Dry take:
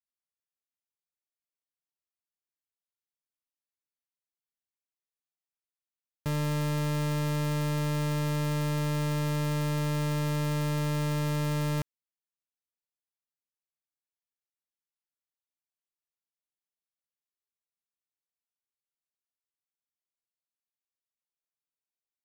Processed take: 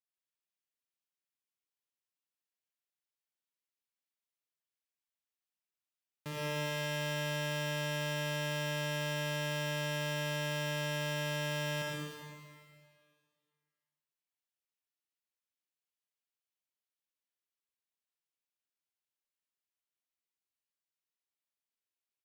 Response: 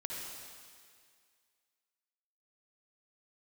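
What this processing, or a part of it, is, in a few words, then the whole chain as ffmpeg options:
PA in a hall: -filter_complex "[0:a]highpass=160,equalizer=f=2.7k:t=o:w=1.4:g=4.5,aecho=1:1:116:0.501[a];[1:a]atrim=start_sample=2205[b];[a][b]afir=irnorm=-1:irlink=0,volume=-5dB"

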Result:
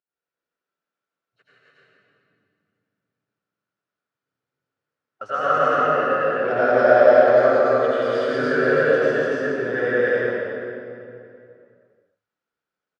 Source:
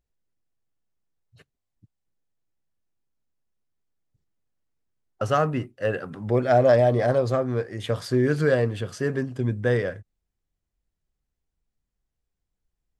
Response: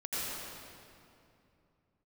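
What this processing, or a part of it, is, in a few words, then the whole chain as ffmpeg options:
station announcement: -filter_complex "[0:a]highpass=340,lowpass=4.3k,equalizer=f=1.4k:t=o:w=0.37:g=11,aecho=1:1:166.2|285.7:0.708|1[a];[1:a]atrim=start_sample=2205[b];[a][b]afir=irnorm=-1:irlink=0,volume=-4.5dB"

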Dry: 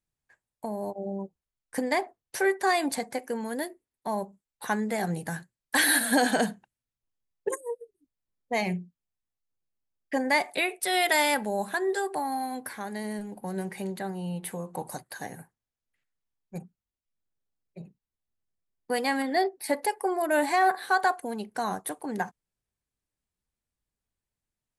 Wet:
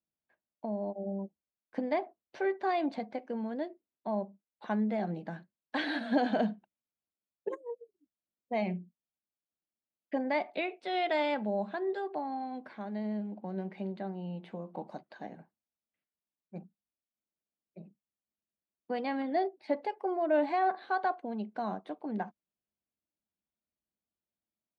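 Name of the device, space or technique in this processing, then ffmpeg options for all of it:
guitar cabinet: -af "highpass=82,equalizer=f=120:t=q:w=4:g=-9,equalizer=f=210:t=q:w=4:g=9,equalizer=f=320:t=q:w=4:g=7,equalizer=f=630:t=q:w=4:g=8,equalizer=f=1.8k:t=q:w=4:g=-6,lowpass=f=3.7k:w=0.5412,lowpass=f=3.7k:w=1.3066,volume=-8.5dB"

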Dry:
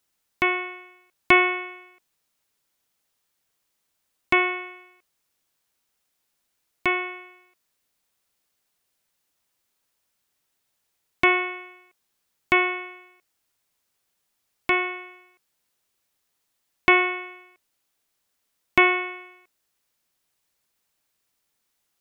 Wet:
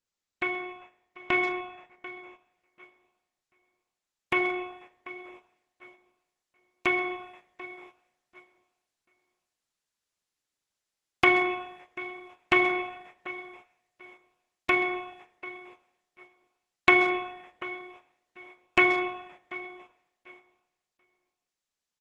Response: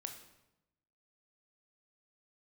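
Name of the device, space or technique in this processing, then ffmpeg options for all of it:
speakerphone in a meeting room: -filter_complex "[0:a]asplit=3[a][b][c];[a]afade=t=out:st=4.36:d=0.02[d];[b]adynamicequalizer=threshold=0.0112:dfrequency=360:dqfactor=1.7:tfrequency=360:tqfactor=1.7:attack=5:release=100:ratio=0.375:range=1.5:mode=boostabove:tftype=bell,afade=t=in:st=4.36:d=0.02,afade=t=out:st=6.88:d=0.02[e];[c]afade=t=in:st=6.88:d=0.02[f];[d][e][f]amix=inputs=3:normalize=0,aecho=1:1:739|1478|2217:0.15|0.0419|0.0117[g];[1:a]atrim=start_sample=2205[h];[g][h]afir=irnorm=-1:irlink=0,asplit=2[i][j];[j]adelay=130,highpass=300,lowpass=3.4k,asoftclip=type=hard:threshold=-15.5dB,volume=-13dB[k];[i][k]amix=inputs=2:normalize=0,dynaudnorm=f=840:g=13:m=14dB,agate=range=-10dB:threshold=-46dB:ratio=16:detection=peak,volume=-4dB" -ar 48000 -c:a libopus -b:a 12k

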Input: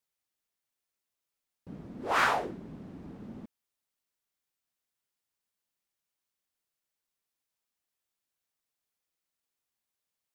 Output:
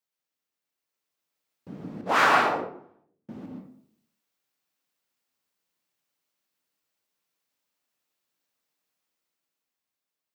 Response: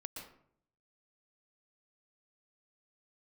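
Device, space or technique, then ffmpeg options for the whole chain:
far laptop microphone: -filter_complex "[0:a]asettb=1/sr,asplit=3[a][b][c];[a]atrim=end=2.014[d];[b]atrim=start=2.01:end=3.29,asetpts=PTS-STARTPTS,afade=t=in:d=0.004:c=qsin,afade=t=out:st=1.276:d=0.004:c=qsin,agate=range=-45dB:threshold=-36dB:ratio=16:detection=peak[e];[c]atrim=start=3.286[f];[d][e]acrossfade=d=0.004:c1=hsin:c2=qsin[g];[g][f]acrossfade=d=0.004:c1=qsin:c2=hsin,equalizer=f=10k:w=1.5:g=-3.5[h];[1:a]atrim=start_sample=2205[i];[h][i]afir=irnorm=-1:irlink=0,highpass=130,dynaudnorm=f=170:g=13:m=6.5dB,volume=3.5dB"

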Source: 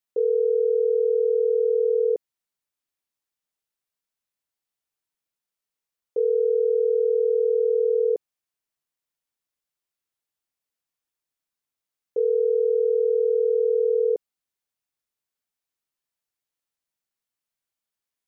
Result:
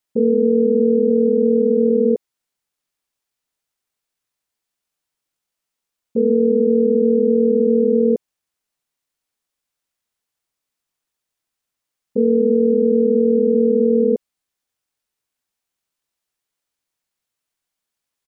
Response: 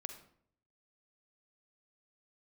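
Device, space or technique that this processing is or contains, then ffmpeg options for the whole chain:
octave pedal: -filter_complex "[0:a]asplit=3[a][b][c];[a]afade=t=out:st=1.09:d=0.02[d];[b]highpass=f=300:w=0.5412,highpass=f=300:w=1.3066,afade=t=in:st=1.09:d=0.02,afade=t=out:st=1.89:d=0.02[e];[c]afade=t=in:st=1.89:d=0.02[f];[d][e][f]amix=inputs=3:normalize=0,asplit=2[g][h];[h]asetrate=22050,aresample=44100,atempo=2,volume=-3dB[i];[g][i]amix=inputs=2:normalize=0,volume=4dB"

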